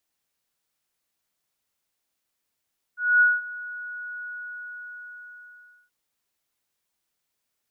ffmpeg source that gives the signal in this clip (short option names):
-f lavfi -i "aevalsrc='0.224*sin(2*PI*1460*t)':d=2.93:s=44100,afade=t=in:d=0.238,afade=t=out:st=0.238:d=0.201:silence=0.106,afade=t=out:st=1.27:d=1.66"